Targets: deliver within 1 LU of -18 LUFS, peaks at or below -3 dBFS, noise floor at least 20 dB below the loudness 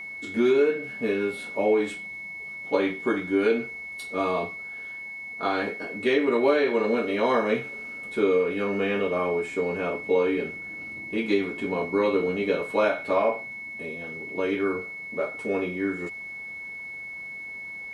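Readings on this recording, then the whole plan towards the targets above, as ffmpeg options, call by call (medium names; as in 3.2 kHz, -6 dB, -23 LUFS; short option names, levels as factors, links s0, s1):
steady tone 2.2 kHz; tone level -35 dBFS; loudness -26.5 LUFS; peak level -8.5 dBFS; loudness target -18.0 LUFS
-> -af "bandreject=f=2200:w=30"
-af "volume=2.66,alimiter=limit=0.708:level=0:latency=1"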